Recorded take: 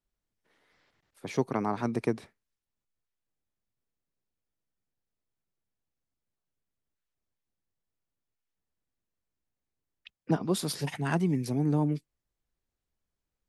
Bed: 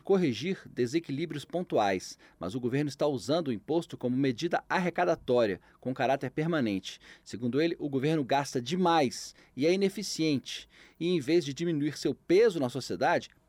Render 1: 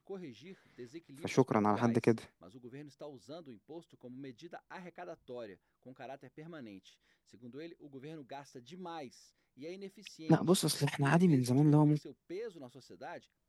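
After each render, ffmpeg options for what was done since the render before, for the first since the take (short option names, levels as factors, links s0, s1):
-filter_complex "[1:a]volume=0.1[s0];[0:a][s0]amix=inputs=2:normalize=0"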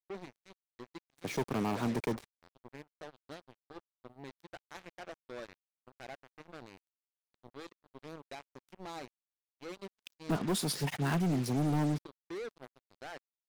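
-af "acrusher=bits=6:mix=0:aa=0.5,asoftclip=type=hard:threshold=0.0447"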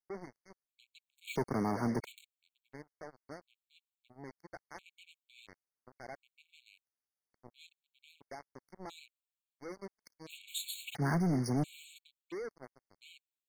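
-af "afftfilt=real='re*gt(sin(2*PI*0.73*pts/sr)*(1-2*mod(floor(b*sr/1024/2200),2)),0)':imag='im*gt(sin(2*PI*0.73*pts/sr)*(1-2*mod(floor(b*sr/1024/2200),2)),0)':win_size=1024:overlap=0.75"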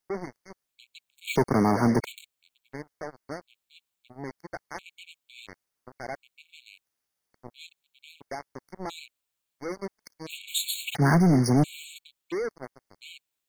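-af "volume=3.55"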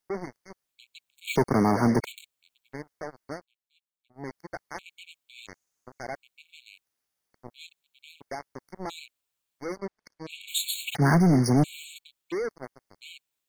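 -filter_complex "[0:a]asettb=1/sr,asplit=3[s0][s1][s2];[s0]atrim=end=5.454[s3];[s1]atrim=start=5.45:end=6.03,asetpts=PTS-STARTPTS,afade=t=in:d=0.004:c=qsin,afade=t=out:st=0.576:d=0.004:c=qsin,equalizer=f=6700:w=3.2:g=12[s4];[s2]atrim=start=6.026[s5];[s3][s4]acrossfade=d=0.004:c1=hsin:c2=qsin[s6];[s6][s5]acrossfade=d=0.004:c1=qsin:c2=hsin,asplit=3[s7][s8][s9];[s7]afade=t=out:st=9.77:d=0.02[s10];[s8]aemphasis=mode=reproduction:type=50fm,afade=t=in:st=9.77:d=0.02,afade=t=out:st=10.39:d=0.02[s11];[s9]afade=t=in:st=10.39:d=0.02[s12];[s10][s11][s12]amix=inputs=3:normalize=0,asplit=3[s13][s14][s15];[s13]atrim=end=3.46,asetpts=PTS-STARTPTS,afade=t=out:st=3.31:d=0.15:c=qsin:silence=0.199526[s16];[s14]atrim=start=3.46:end=4.13,asetpts=PTS-STARTPTS,volume=0.2[s17];[s15]atrim=start=4.13,asetpts=PTS-STARTPTS,afade=t=in:d=0.15:c=qsin:silence=0.199526[s18];[s16][s17][s18]concat=n=3:v=0:a=1"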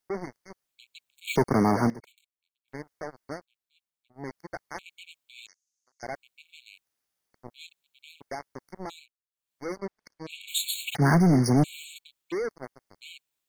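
-filter_complex "[0:a]asettb=1/sr,asplit=3[s0][s1][s2];[s0]atrim=end=5.474[s3];[s1]atrim=start=5.47:end=6.03,asetpts=PTS-STARTPTS,afade=t=in:d=0.004:c=qsin,afade=t=out:st=0.556:d=0.004:c=qsin,bandpass=f=6000:t=q:w=2[s4];[s2]atrim=start=6.026[s5];[s3][s4]acrossfade=d=0.004:c1=hsin:c2=qsin[s6];[s6][s5]acrossfade=d=0.004:c1=qsin:c2=hsin,asplit=5[s7][s8][s9][s10][s11];[s7]atrim=end=1.9,asetpts=PTS-STARTPTS,afade=t=out:st=1.69:d=0.21:c=log:silence=0.112202[s12];[s8]atrim=start=1.9:end=2.68,asetpts=PTS-STARTPTS,volume=0.112[s13];[s9]atrim=start=2.68:end=9.12,asetpts=PTS-STARTPTS,afade=t=in:d=0.21:c=log:silence=0.112202,afade=t=out:st=6.09:d=0.35:silence=0.105925[s14];[s10]atrim=start=9.12:end=9.31,asetpts=PTS-STARTPTS,volume=0.106[s15];[s11]atrim=start=9.31,asetpts=PTS-STARTPTS,afade=t=in:d=0.35:silence=0.105925[s16];[s12][s13][s14][s15][s16]concat=n=5:v=0:a=1"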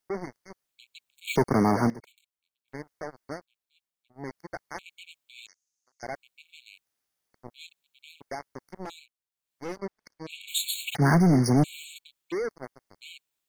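-filter_complex "[0:a]asettb=1/sr,asplit=3[s0][s1][s2];[s0]atrim=end=8.604[s3];[s1]atrim=start=8.6:end=9.81,asetpts=PTS-STARTPTS,afade=t=in:d=0.004:c=qsin,afade=t=out:st=1.206:d=0.004:c=qsin,aeval=exprs='clip(val(0),-1,0.0168)':c=same[s4];[s2]atrim=start=9.806[s5];[s3][s4]acrossfade=d=0.004:c1=hsin:c2=qsin[s6];[s6][s5]acrossfade=d=0.004:c1=qsin:c2=hsin"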